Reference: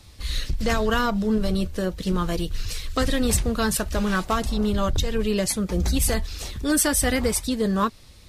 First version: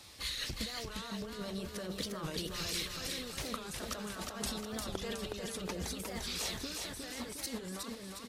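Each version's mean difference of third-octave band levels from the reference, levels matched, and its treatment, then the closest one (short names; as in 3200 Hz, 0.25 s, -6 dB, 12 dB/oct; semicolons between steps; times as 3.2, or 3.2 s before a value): 10.0 dB: HPF 460 Hz 6 dB/oct; negative-ratio compressor -36 dBFS, ratio -1; on a send: feedback echo 0.359 s, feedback 53%, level -4 dB; on the sum: record warp 45 rpm, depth 160 cents; gain -7 dB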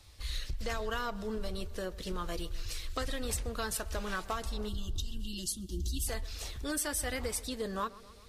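5.0 dB: spectral gain 4.68–6.07, 370–2700 Hz -27 dB; bell 190 Hz -10 dB 1.4 oct; compressor 3:1, threshold -25 dBFS, peak gain reduction 6.5 dB; on a send: tape echo 0.131 s, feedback 73%, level -18 dB, low-pass 1900 Hz; on the sum: gain -7 dB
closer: second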